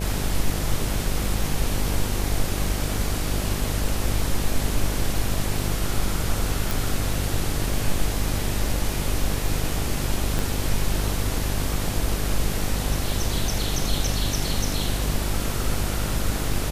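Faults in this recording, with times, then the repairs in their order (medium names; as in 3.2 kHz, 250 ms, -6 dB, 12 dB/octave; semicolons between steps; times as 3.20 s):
buzz 50 Hz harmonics 17 -28 dBFS
6.71 s: pop
10.39 s: pop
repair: de-click; de-hum 50 Hz, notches 17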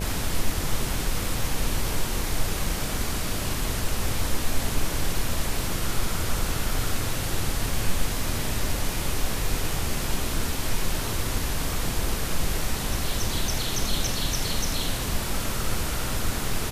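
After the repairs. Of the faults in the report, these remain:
10.39 s: pop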